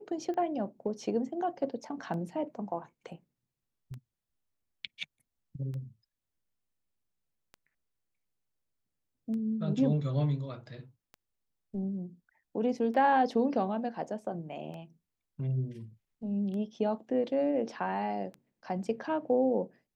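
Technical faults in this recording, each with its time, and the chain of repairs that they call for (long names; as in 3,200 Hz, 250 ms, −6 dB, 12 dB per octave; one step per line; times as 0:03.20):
scratch tick 33 1/3 rpm −31 dBFS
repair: click removal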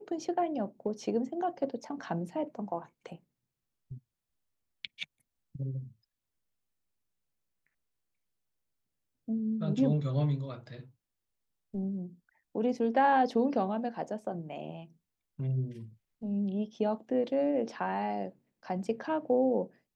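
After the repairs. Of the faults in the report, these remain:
none of them is left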